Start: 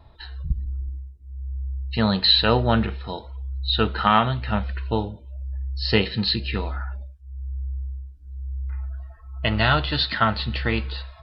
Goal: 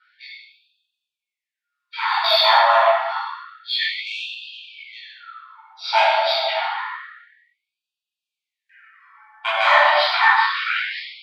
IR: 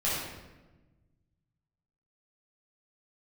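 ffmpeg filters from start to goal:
-filter_complex "[0:a]bandreject=f=50:t=h:w=6,bandreject=f=100:t=h:w=6,bandreject=f=150:t=h:w=6,aeval=exprs='val(0)*sin(2*PI*450*n/s)':c=same,asplit=2[s0][s1];[s1]highpass=f=720:p=1,volume=3.55,asoftclip=type=tanh:threshold=0.631[s2];[s0][s2]amix=inputs=2:normalize=0,lowpass=f=1300:p=1,volume=0.501[s3];[1:a]atrim=start_sample=2205,asetrate=33075,aresample=44100[s4];[s3][s4]afir=irnorm=-1:irlink=0,afftfilt=real='re*gte(b*sr/1024,560*pow(2500/560,0.5+0.5*sin(2*PI*0.28*pts/sr)))':imag='im*gte(b*sr/1024,560*pow(2500/560,0.5+0.5*sin(2*PI*0.28*pts/sr)))':win_size=1024:overlap=0.75,volume=0.841"

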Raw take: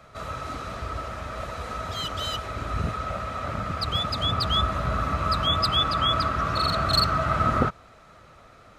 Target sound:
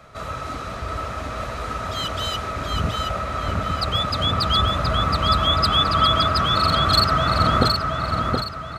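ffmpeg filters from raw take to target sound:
-af "aecho=1:1:722|1444|2166|2888|3610:0.631|0.246|0.096|0.0374|0.0146,volume=1.5"

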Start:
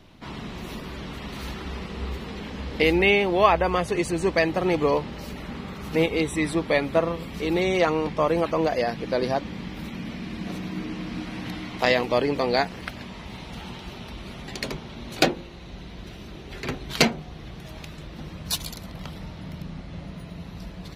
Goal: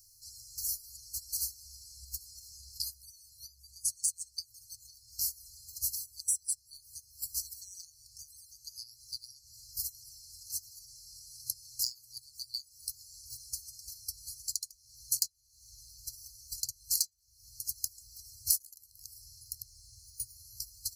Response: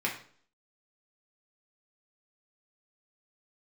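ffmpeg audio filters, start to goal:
-af "aexciter=amount=15.9:drive=8.7:freq=4700,acompressor=threshold=0.0355:ratio=16,highshelf=f=8300:g=4.5,agate=range=0.112:threshold=0.0398:ratio=16:detection=peak,afftfilt=real='re*(1-between(b*sr/4096,120,4100))':imag='im*(1-between(b*sr/4096,120,4100))':win_size=4096:overlap=0.75"

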